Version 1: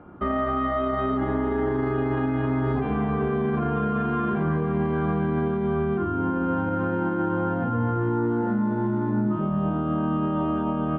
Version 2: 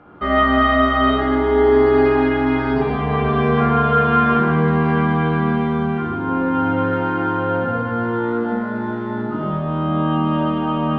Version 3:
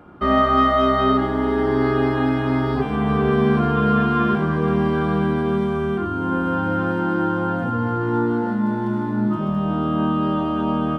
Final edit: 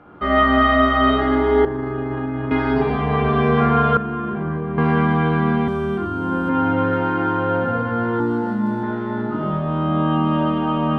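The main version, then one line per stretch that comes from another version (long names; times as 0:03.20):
2
0:01.65–0:02.51: punch in from 1
0:03.97–0:04.78: punch in from 1
0:05.68–0:06.49: punch in from 3
0:08.20–0:08.83: punch in from 3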